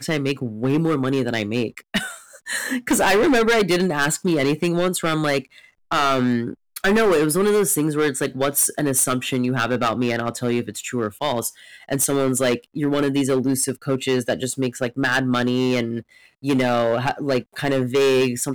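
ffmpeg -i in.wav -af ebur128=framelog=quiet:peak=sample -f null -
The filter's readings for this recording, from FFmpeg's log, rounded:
Integrated loudness:
  I:         -20.8 LUFS
  Threshold: -31.0 LUFS
Loudness range:
  LRA:         3.1 LU
  Threshold: -40.9 LUFS
  LRA low:   -22.5 LUFS
  LRA high:  -19.3 LUFS
Sample peak:
  Peak:      -12.0 dBFS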